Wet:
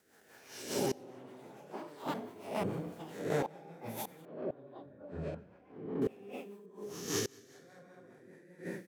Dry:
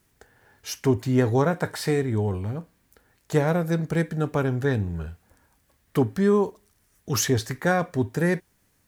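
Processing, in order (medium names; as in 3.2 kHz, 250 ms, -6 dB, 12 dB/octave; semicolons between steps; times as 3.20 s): spectral blur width 309 ms; high-pass 220 Hz 12 dB/octave; in parallel at +1 dB: peak limiter -23.5 dBFS, peak gain reduction 8.5 dB; on the sum: flange 1.8 Hz, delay 1.4 ms, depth 5.1 ms, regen -42%; on a send: loudspeakers at several distances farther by 46 m -3 dB, 64 m -2 dB, 81 m -1 dB; on the sum: inverted gate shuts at -18 dBFS, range -28 dB; rotary cabinet horn 5 Hz; ever faster or slower copies 213 ms, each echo +6 st, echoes 2; 4.25–6.02 s: tape spacing loss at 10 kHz 44 dB; trim -1.5 dB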